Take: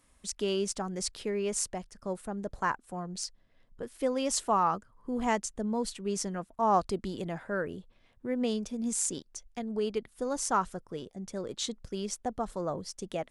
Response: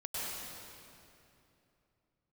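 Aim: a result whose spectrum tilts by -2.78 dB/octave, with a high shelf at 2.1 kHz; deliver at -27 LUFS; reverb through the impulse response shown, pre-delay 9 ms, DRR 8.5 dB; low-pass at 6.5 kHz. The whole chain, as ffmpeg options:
-filter_complex "[0:a]lowpass=6500,highshelf=f=2100:g=8.5,asplit=2[s0][s1];[1:a]atrim=start_sample=2205,adelay=9[s2];[s1][s2]afir=irnorm=-1:irlink=0,volume=0.251[s3];[s0][s3]amix=inputs=2:normalize=0,volume=1.5"

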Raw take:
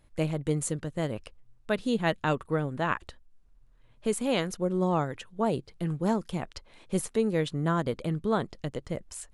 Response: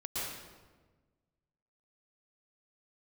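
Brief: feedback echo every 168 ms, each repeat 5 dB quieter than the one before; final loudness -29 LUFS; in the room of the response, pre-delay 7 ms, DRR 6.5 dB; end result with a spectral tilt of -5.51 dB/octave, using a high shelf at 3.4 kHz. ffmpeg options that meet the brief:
-filter_complex "[0:a]highshelf=f=3400:g=-8.5,aecho=1:1:168|336|504|672|840|1008|1176:0.562|0.315|0.176|0.0988|0.0553|0.031|0.0173,asplit=2[s0][s1];[1:a]atrim=start_sample=2205,adelay=7[s2];[s1][s2]afir=irnorm=-1:irlink=0,volume=0.316[s3];[s0][s3]amix=inputs=2:normalize=0,volume=0.944"

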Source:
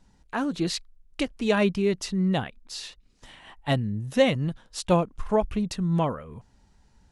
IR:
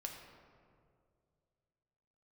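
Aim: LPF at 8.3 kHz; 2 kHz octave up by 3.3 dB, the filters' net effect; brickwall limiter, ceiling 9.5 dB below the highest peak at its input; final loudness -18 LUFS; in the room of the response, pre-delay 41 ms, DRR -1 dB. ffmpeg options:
-filter_complex "[0:a]lowpass=8300,equalizer=f=2000:t=o:g=4,alimiter=limit=0.126:level=0:latency=1,asplit=2[s0][s1];[1:a]atrim=start_sample=2205,adelay=41[s2];[s1][s2]afir=irnorm=-1:irlink=0,volume=1.41[s3];[s0][s3]amix=inputs=2:normalize=0,volume=2.51"

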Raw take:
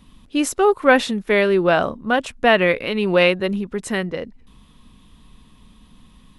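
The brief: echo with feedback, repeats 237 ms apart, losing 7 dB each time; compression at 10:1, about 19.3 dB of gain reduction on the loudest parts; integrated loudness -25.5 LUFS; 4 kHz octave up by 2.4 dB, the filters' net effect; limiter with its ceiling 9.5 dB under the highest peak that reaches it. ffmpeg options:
-af "equalizer=f=4000:t=o:g=3.5,acompressor=threshold=0.0398:ratio=10,alimiter=limit=0.0631:level=0:latency=1,aecho=1:1:237|474|711|948|1185:0.447|0.201|0.0905|0.0407|0.0183,volume=2.51"

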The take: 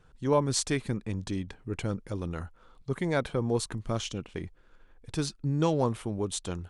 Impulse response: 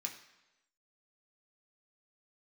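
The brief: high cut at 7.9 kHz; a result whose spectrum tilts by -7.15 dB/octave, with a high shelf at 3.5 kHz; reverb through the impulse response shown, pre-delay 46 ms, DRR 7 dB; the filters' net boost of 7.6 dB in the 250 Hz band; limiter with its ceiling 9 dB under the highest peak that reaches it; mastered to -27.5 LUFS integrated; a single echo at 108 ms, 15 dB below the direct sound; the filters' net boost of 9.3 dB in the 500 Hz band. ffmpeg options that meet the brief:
-filter_complex "[0:a]lowpass=7900,equalizer=f=250:t=o:g=7,equalizer=f=500:t=o:g=9,highshelf=f=3500:g=-3.5,alimiter=limit=0.168:level=0:latency=1,aecho=1:1:108:0.178,asplit=2[s0][s1];[1:a]atrim=start_sample=2205,adelay=46[s2];[s1][s2]afir=irnorm=-1:irlink=0,volume=0.501[s3];[s0][s3]amix=inputs=2:normalize=0,volume=0.944"

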